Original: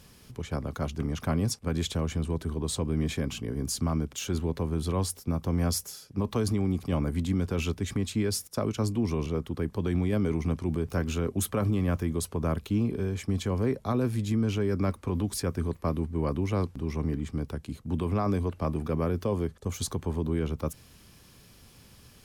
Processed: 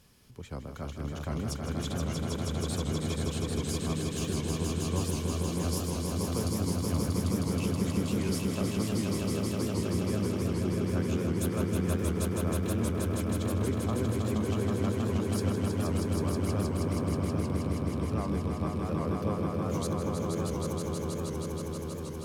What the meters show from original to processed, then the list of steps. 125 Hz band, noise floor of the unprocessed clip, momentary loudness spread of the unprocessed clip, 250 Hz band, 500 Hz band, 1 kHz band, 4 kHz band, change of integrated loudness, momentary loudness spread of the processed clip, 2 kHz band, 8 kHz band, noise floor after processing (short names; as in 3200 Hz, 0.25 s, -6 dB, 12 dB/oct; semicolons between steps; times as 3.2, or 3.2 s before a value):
-1.0 dB, -55 dBFS, 5 LU, -0.5 dB, -1.0 dB, -1.0 dB, -1.0 dB, -1.0 dB, 4 LU, -1.0 dB, -1.0 dB, -37 dBFS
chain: on a send: swelling echo 0.159 s, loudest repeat 5, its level -4 dB; on the sum: record warp 78 rpm, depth 100 cents; gain -7.5 dB